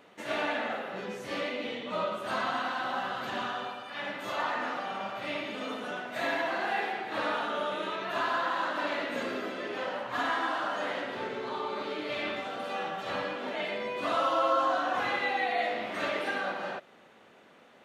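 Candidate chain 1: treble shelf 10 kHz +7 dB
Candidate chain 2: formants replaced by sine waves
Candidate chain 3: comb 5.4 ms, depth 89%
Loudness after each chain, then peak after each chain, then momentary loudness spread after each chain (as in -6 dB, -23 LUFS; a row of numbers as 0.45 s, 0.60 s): -32.0 LUFS, -32.5 LUFS, -29.5 LUFS; -15.5 dBFS, -13.5 dBFS, -12.0 dBFS; 7 LU, 12 LU, 7 LU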